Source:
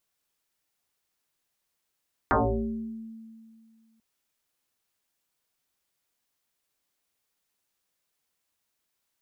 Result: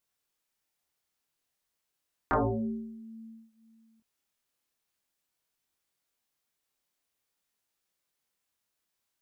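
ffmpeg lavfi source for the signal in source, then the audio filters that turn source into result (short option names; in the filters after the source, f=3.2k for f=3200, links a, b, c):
-f lavfi -i "aevalsrc='0.126*pow(10,-3*t/2.22)*sin(2*PI*224*t+8.9*pow(10,-3*t/0.93)*sin(2*PI*0.75*224*t))':d=1.69:s=44100"
-af "flanger=delay=22.5:depth=5.9:speed=0.51"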